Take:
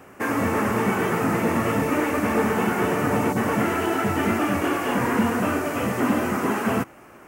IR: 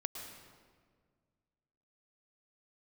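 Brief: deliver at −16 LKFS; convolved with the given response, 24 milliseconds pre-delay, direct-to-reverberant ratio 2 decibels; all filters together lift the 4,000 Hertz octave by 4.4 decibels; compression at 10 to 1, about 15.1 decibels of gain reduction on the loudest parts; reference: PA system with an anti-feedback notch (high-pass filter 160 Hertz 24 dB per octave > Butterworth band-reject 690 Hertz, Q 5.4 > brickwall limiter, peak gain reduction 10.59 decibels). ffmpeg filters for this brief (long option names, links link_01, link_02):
-filter_complex "[0:a]equalizer=frequency=4000:width_type=o:gain=7,acompressor=threshold=-33dB:ratio=10,asplit=2[link_01][link_02];[1:a]atrim=start_sample=2205,adelay=24[link_03];[link_02][link_03]afir=irnorm=-1:irlink=0,volume=-2dB[link_04];[link_01][link_04]amix=inputs=2:normalize=0,highpass=frequency=160:width=0.5412,highpass=frequency=160:width=1.3066,asuperstop=centerf=690:order=8:qfactor=5.4,volume=24dB,alimiter=limit=-8dB:level=0:latency=1"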